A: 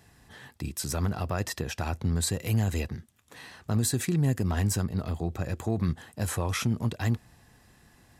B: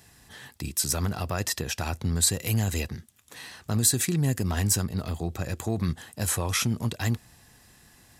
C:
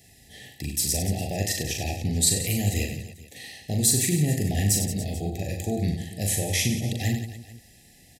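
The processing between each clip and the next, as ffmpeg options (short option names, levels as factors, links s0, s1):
-af "highshelf=f=2800:g=9"
-af "asuperstop=centerf=1200:order=20:qfactor=1.3,aecho=1:1:40|96|174.4|284.2|437.8:0.631|0.398|0.251|0.158|0.1"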